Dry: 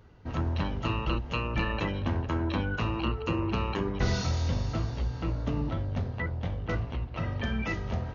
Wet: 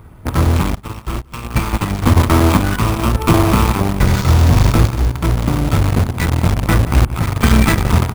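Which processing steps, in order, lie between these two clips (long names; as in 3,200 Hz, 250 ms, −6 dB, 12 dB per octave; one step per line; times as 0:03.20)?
lower of the sound and its delayed copy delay 0.86 ms
high-shelf EQ 2,400 Hz −10 dB
in parallel at −4 dB: bit reduction 5 bits
on the sum: sample-and-hold tremolo
on a send: single-tap delay 178 ms −15.5 dB
on the sum: bad sample-rate conversion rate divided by 4×, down none, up hold
boost into a limiter +18 dB
0:00.75–0:02.17: expander for the loud parts 2.5 to 1, over −18 dBFS
level −1 dB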